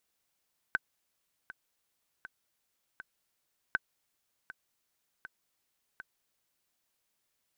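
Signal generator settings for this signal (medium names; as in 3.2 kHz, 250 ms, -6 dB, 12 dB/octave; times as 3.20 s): metronome 80 bpm, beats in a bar 4, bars 2, 1.53 kHz, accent 16.5 dB -14.5 dBFS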